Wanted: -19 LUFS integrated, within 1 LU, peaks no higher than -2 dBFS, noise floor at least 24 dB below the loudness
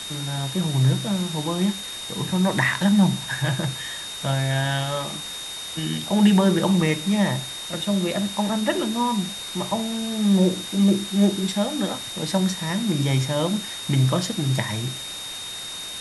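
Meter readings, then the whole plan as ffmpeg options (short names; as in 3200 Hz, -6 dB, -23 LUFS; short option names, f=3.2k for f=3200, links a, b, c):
steady tone 3700 Hz; tone level -33 dBFS; noise floor -34 dBFS; noise floor target -47 dBFS; loudness -23.0 LUFS; peak -6.5 dBFS; loudness target -19.0 LUFS
-> -af "bandreject=f=3.7k:w=30"
-af "afftdn=nr=13:nf=-34"
-af "volume=4dB"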